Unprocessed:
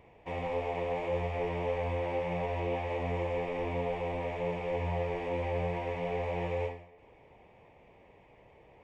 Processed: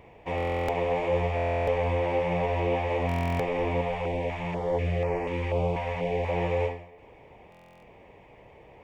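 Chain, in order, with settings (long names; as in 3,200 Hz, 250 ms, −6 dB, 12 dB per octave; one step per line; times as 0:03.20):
buffer that repeats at 0:00.36/0:01.35/0:03.07/0:07.50, samples 1,024, times 13
0:03.81–0:06.29: notch on a step sequencer 4.1 Hz 340–3,500 Hz
level +6.5 dB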